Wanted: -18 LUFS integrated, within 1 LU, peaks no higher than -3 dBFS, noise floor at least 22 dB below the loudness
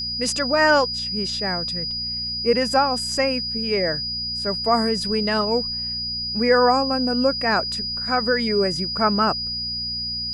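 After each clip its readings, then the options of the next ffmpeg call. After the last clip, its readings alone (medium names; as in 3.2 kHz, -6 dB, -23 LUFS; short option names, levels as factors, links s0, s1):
hum 60 Hz; highest harmonic 240 Hz; hum level -36 dBFS; steady tone 4.9 kHz; tone level -25 dBFS; loudness -21.0 LUFS; peak level -6.0 dBFS; loudness target -18.0 LUFS
-> -af "bandreject=f=60:t=h:w=4,bandreject=f=120:t=h:w=4,bandreject=f=180:t=h:w=4,bandreject=f=240:t=h:w=4"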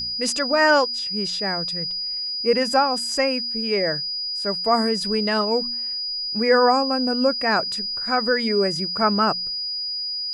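hum not found; steady tone 4.9 kHz; tone level -25 dBFS
-> -af "bandreject=f=4900:w=30"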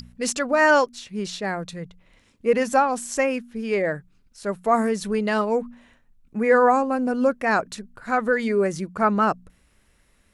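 steady tone not found; loudness -22.5 LUFS; peak level -6.5 dBFS; loudness target -18.0 LUFS
-> -af "volume=1.68,alimiter=limit=0.708:level=0:latency=1"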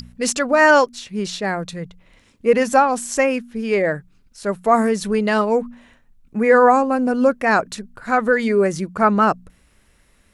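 loudness -18.0 LUFS; peak level -3.0 dBFS; noise floor -57 dBFS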